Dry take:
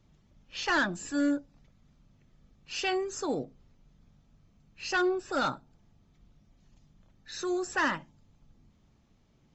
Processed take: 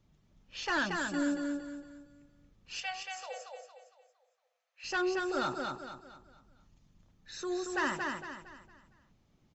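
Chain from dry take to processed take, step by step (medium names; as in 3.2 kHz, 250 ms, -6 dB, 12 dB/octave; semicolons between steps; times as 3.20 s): 2.80–4.84 s: rippled Chebyshev high-pass 490 Hz, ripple 6 dB; feedback delay 229 ms, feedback 38%, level -4 dB; trim -4.5 dB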